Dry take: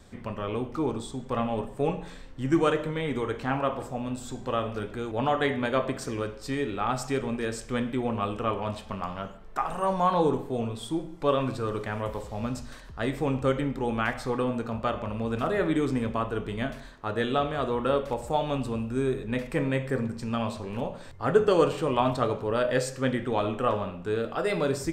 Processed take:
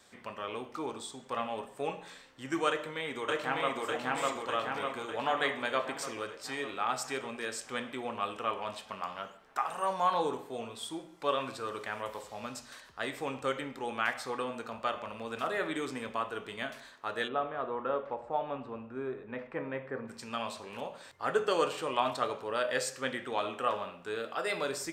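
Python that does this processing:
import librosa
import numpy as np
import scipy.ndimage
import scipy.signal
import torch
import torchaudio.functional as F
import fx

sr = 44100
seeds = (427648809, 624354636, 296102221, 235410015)

y = fx.echo_throw(x, sr, start_s=2.68, length_s=1.14, ms=600, feedback_pct=65, wet_db=0.0)
y = fx.lowpass(y, sr, hz=1400.0, slope=12, at=(17.27, 20.07), fade=0.02)
y = fx.highpass(y, sr, hz=1100.0, slope=6)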